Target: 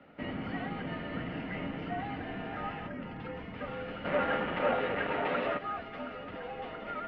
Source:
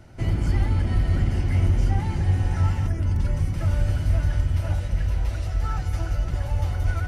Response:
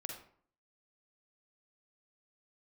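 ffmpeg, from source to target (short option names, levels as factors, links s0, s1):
-filter_complex "[0:a]asplit=3[s0][s1][s2];[s0]afade=t=out:st=4.04:d=0.02[s3];[s1]asplit=2[s4][s5];[s5]highpass=f=720:p=1,volume=17.8,asoftclip=type=tanh:threshold=0.266[s6];[s4][s6]amix=inputs=2:normalize=0,lowpass=f=1200:p=1,volume=0.501,afade=t=in:st=4.04:d=0.02,afade=t=out:st=5.57:d=0.02[s7];[s2]afade=t=in:st=5.57:d=0.02[s8];[s3][s7][s8]amix=inputs=3:normalize=0,highpass=f=250:t=q:w=0.5412,highpass=f=250:t=q:w=1.307,lowpass=f=3300:t=q:w=0.5176,lowpass=f=3300:t=q:w=0.7071,lowpass=f=3300:t=q:w=1.932,afreqshift=-75,volume=0.841"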